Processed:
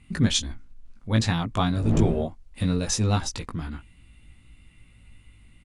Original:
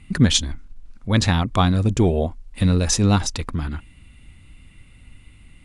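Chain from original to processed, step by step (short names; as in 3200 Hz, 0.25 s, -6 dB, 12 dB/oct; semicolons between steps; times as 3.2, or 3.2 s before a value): 1.64–2.22 wind noise 180 Hz -22 dBFS; doubler 18 ms -4 dB; gain -7 dB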